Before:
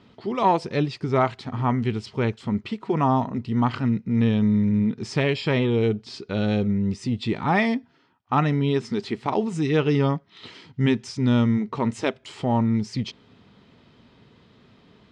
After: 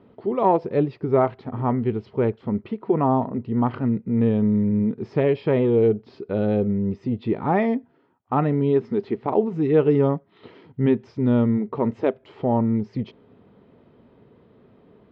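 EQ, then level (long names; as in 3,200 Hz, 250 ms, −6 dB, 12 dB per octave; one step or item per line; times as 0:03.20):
low-pass filter 1,500 Hz 6 dB per octave
high-frequency loss of the air 180 metres
parametric band 470 Hz +8.5 dB 1.5 octaves
−2.0 dB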